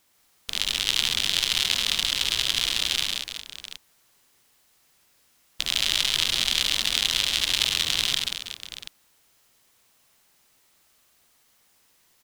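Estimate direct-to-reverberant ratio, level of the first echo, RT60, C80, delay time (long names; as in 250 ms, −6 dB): no reverb audible, −5.5 dB, no reverb audible, no reverb audible, 72 ms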